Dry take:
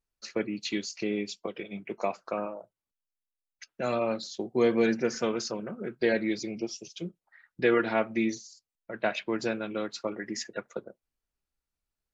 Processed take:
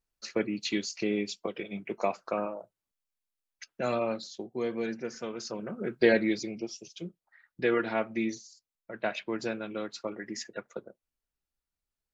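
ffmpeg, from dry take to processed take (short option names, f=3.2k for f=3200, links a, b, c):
-af "volume=13.5dB,afade=t=out:st=3.68:d=0.94:silence=0.334965,afade=t=in:st=5.34:d=0.69:silence=0.237137,afade=t=out:st=6.03:d=0.55:silence=0.446684"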